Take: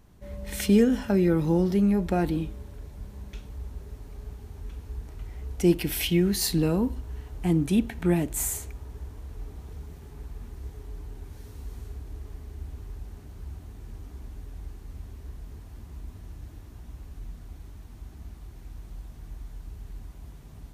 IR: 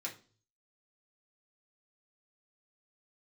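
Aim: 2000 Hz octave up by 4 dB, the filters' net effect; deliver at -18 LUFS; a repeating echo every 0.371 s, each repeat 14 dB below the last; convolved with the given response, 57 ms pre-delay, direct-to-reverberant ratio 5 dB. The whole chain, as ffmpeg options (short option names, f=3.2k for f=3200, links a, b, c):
-filter_complex "[0:a]equalizer=f=2k:t=o:g=5,aecho=1:1:371|742:0.2|0.0399,asplit=2[a][b];[1:a]atrim=start_sample=2205,adelay=57[c];[b][c]afir=irnorm=-1:irlink=0,volume=-5dB[d];[a][d]amix=inputs=2:normalize=0,volume=5.5dB"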